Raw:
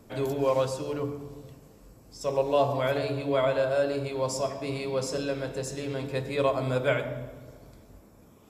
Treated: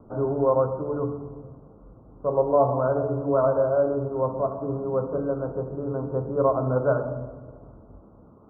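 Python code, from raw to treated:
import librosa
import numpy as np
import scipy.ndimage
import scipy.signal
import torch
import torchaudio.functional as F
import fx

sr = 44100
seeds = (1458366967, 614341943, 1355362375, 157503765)

y = scipy.signal.sosfilt(scipy.signal.butter(16, 1400.0, 'lowpass', fs=sr, output='sos'), x)
y = F.gain(torch.from_numpy(y), 4.0).numpy()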